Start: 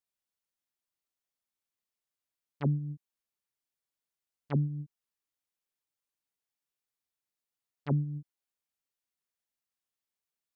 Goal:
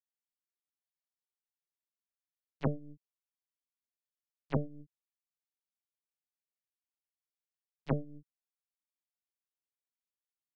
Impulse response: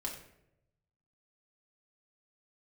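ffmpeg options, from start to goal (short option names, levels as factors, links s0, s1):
-filter_complex "[0:a]aeval=exprs='0.119*(cos(1*acos(clip(val(0)/0.119,-1,1)))-cos(1*PI/2))+0.0376*(cos(2*acos(clip(val(0)/0.119,-1,1)))-cos(2*PI/2))+0.0422*(cos(3*acos(clip(val(0)/0.119,-1,1)))-cos(3*PI/2))':c=same,acrossover=split=250|890[s0][s1][s2];[s0]acompressor=threshold=0.01:ratio=4[s3];[s1]acompressor=threshold=0.00891:ratio=4[s4];[s2]acompressor=threshold=0.00282:ratio=4[s5];[s3][s4][s5]amix=inputs=3:normalize=0,volume=2.82"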